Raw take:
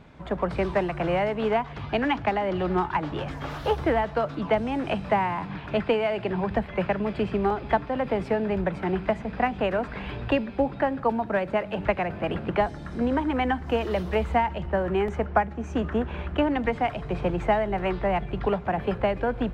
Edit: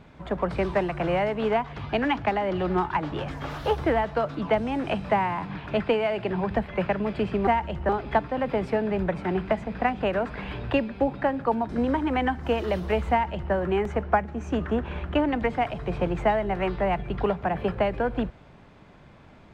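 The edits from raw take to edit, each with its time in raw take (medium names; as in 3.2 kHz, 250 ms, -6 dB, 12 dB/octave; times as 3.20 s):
11.27–12.92 s: delete
14.34–14.76 s: copy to 7.47 s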